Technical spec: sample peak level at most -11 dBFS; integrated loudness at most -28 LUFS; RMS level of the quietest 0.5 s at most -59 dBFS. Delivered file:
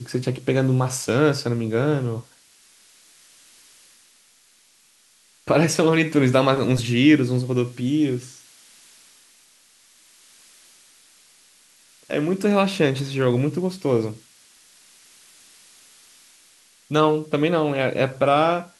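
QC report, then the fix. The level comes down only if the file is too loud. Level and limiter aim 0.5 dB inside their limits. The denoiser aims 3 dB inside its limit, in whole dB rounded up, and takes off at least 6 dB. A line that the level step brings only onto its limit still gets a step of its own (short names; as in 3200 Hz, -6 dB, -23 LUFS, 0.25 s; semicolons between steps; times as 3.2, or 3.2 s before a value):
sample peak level -4.0 dBFS: fail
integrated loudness -21.0 LUFS: fail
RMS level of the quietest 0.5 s -57 dBFS: fail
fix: gain -7.5 dB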